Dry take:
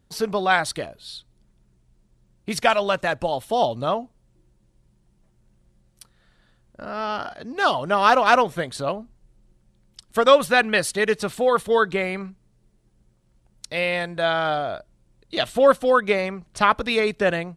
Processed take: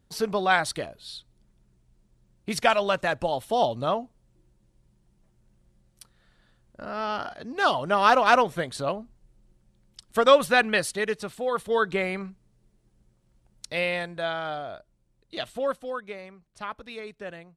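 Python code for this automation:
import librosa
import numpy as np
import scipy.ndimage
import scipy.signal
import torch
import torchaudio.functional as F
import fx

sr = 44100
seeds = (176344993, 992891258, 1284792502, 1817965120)

y = fx.gain(x, sr, db=fx.line((10.67, -2.5), (11.37, -9.5), (11.98, -2.5), (13.78, -2.5), (14.41, -9.0), (15.38, -9.0), (16.12, -17.5)))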